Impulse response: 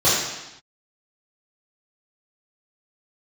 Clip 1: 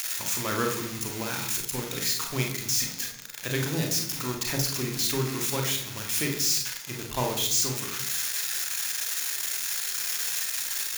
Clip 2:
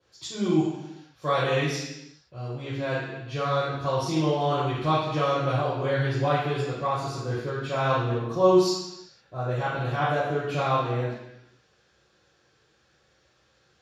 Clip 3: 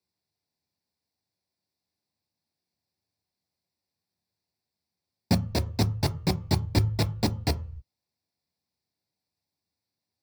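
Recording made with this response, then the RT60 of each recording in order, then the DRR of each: 2; 0.60 s, no single decay rate, 0.45 s; 1.5 dB, -10.5 dB, 9.0 dB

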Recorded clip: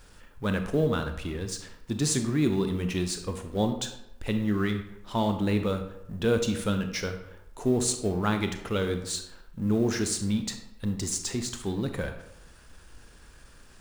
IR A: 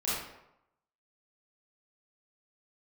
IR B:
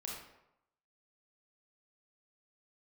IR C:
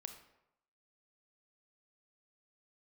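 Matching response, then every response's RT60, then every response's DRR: C; 0.85 s, 0.85 s, 0.85 s; -10.0 dB, -3.0 dB, 6.5 dB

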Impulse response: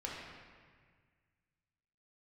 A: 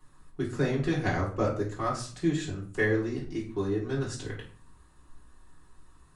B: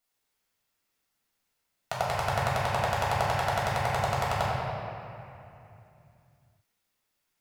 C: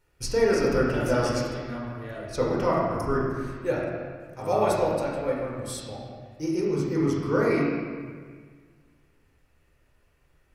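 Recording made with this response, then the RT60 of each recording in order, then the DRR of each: C; 0.45 s, 2.8 s, 1.7 s; -5.5 dB, -6.5 dB, -4.5 dB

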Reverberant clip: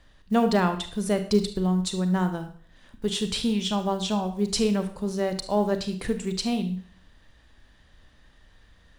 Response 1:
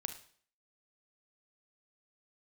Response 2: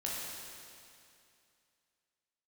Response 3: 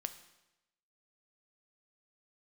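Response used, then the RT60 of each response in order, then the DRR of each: 1; 0.50 s, 2.5 s, 0.95 s; 7.5 dB, -5.5 dB, 9.0 dB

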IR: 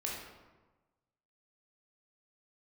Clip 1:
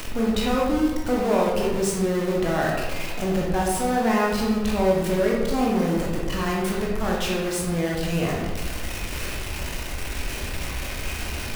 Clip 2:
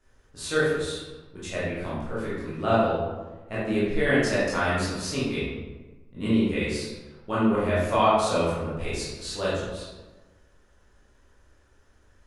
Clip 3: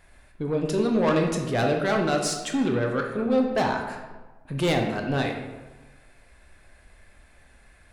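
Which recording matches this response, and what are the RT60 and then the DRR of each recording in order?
1; 1.2 s, 1.2 s, 1.2 s; -3.5 dB, -10.5 dB, 2.0 dB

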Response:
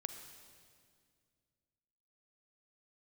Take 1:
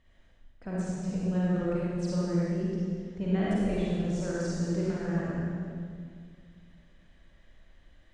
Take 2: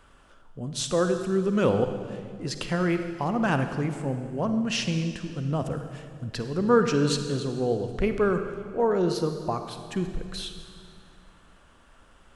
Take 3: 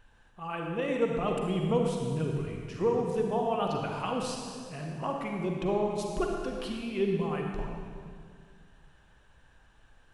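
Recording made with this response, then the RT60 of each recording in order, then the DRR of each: 2; 2.1 s, 2.1 s, 2.1 s; -7.5 dB, 7.0 dB, 0.5 dB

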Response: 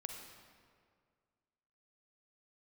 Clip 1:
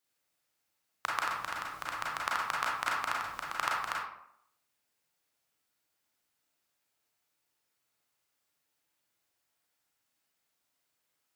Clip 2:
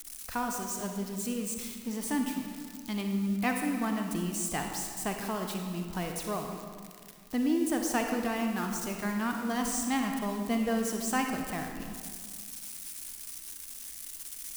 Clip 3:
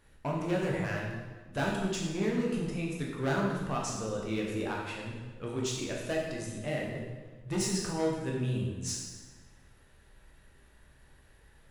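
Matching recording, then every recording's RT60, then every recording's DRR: 2; 0.70 s, 2.0 s, 1.3 s; -4.5 dB, 3.0 dB, -3.0 dB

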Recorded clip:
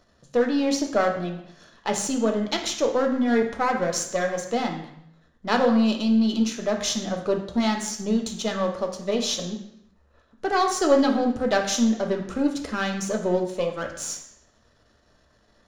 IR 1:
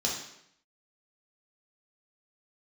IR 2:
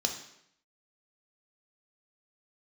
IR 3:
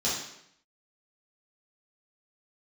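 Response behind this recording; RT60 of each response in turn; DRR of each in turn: 2; 0.75 s, 0.75 s, 0.75 s; -3.5 dB, 3.0 dB, -9.0 dB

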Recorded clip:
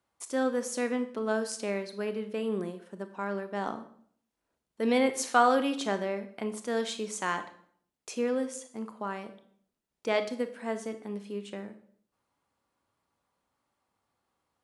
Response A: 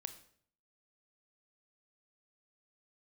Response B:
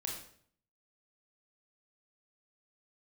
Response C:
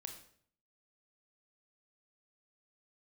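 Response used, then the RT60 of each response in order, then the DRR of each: A; 0.60 s, 0.60 s, 0.60 s; 9.5 dB, -1.0 dB, 4.0 dB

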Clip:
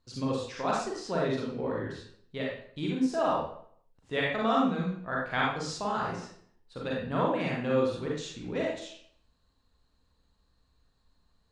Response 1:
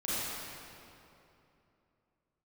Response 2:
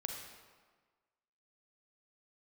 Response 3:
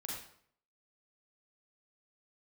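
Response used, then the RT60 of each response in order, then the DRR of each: 3; 2.9 s, 1.5 s, 0.60 s; -11.5 dB, 2.0 dB, -4.0 dB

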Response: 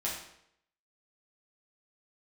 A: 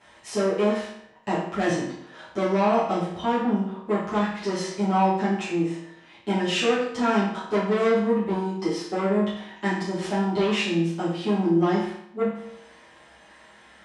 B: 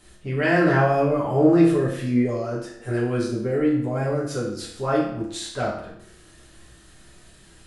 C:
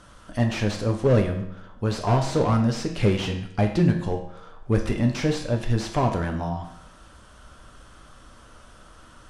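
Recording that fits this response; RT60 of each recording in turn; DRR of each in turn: B; 0.75 s, 0.75 s, 0.75 s; -12.0 dB, -6.5 dB, 2.5 dB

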